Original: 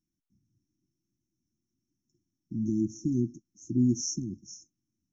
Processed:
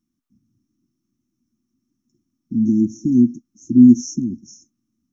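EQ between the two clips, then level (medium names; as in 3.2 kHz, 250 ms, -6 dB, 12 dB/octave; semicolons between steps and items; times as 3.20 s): dynamic bell 4.8 kHz, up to -5 dB, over -49 dBFS, Q 1.5; peaking EQ 240 Hz +13 dB 0.46 oct; peaking EQ 1.2 kHz +10.5 dB 0.28 oct; +4.5 dB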